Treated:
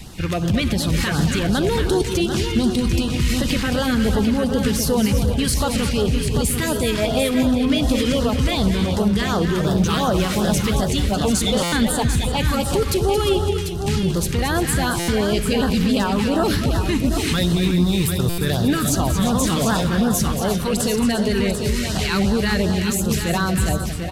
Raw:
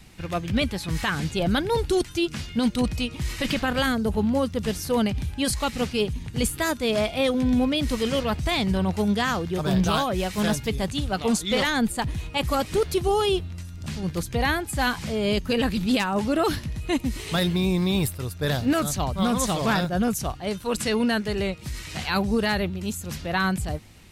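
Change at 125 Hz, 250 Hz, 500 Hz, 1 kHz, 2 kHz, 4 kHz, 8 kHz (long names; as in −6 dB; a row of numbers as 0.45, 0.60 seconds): +8.0, +5.5, +4.0, +2.5, +2.5, +4.5, +8.0 decibels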